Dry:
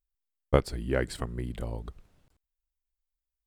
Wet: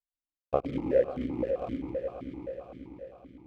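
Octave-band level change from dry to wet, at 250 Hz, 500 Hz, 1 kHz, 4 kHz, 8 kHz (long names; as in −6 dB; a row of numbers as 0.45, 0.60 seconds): +2.5 dB, +3.5 dB, 0.0 dB, below −10 dB, below −20 dB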